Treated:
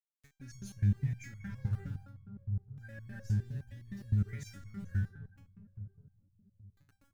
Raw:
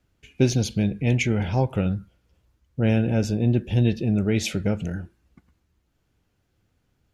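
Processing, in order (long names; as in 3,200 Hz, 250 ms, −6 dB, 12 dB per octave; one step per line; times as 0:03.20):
camcorder AGC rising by 6.9 dB per second
drawn EQ curve 130 Hz 0 dB, 300 Hz −19 dB, 730 Hz −24 dB, 1,800 Hz +1 dB, 2,700 Hz −25 dB, 7,100 Hz −9 dB
brickwall limiter −22.5 dBFS, peak gain reduction 8 dB
centre clipping without the shift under −47 dBFS
on a send: feedback echo with a low-pass in the loop 188 ms, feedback 77%, low-pass 1,100 Hz, level −8 dB
on the sum: step-sequenced resonator 9.7 Hz 100–1,100 Hz
level +5.5 dB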